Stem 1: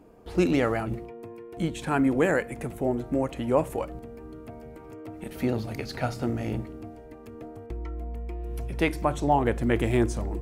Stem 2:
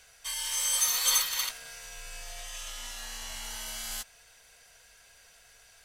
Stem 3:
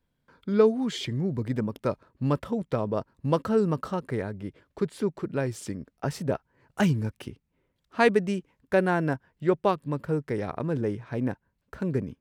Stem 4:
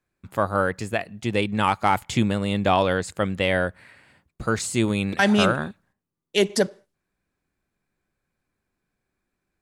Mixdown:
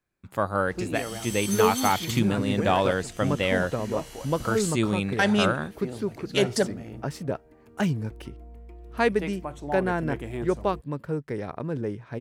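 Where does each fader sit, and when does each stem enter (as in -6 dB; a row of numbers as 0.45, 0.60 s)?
-10.0, -7.5, -2.0, -3.0 dB; 0.40, 0.70, 1.00, 0.00 s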